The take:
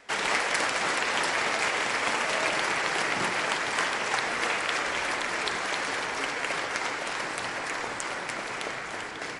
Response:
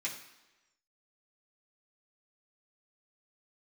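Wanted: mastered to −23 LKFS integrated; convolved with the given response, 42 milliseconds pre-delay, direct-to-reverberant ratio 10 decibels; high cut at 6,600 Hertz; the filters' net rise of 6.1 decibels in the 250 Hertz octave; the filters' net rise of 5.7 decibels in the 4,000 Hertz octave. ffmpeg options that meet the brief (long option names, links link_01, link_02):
-filter_complex "[0:a]lowpass=6600,equalizer=frequency=250:width_type=o:gain=8,equalizer=frequency=4000:width_type=o:gain=8,asplit=2[link_01][link_02];[1:a]atrim=start_sample=2205,adelay=42[link_03];[link_02][link_03]afir=irnorm=-1:irlink=0,volume=-12.5dB[link_04];[link_01][link_04]amix=inputs=2:normalize=0,volume=2dB"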